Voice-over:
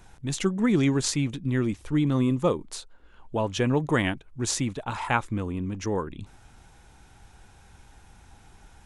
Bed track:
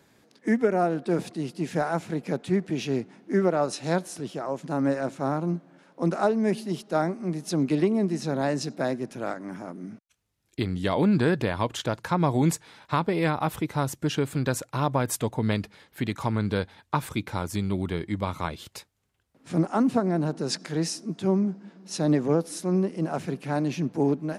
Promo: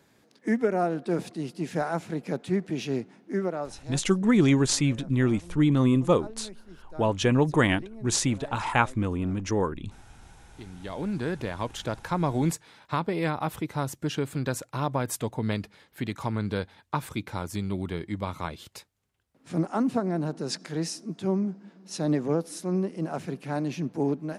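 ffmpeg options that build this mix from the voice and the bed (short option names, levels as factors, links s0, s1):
-filter_complex "[0:a]adelay=3650,volume=1.26[s0];[1:a]volume=5.62,afade=t=out:st=3.03:d=0.98:silence=0.125893,afade=t=in:st=10.5:d=1.46:silence=0.141254[s1];[s0][s1]amix=inputs=2:normalize=0"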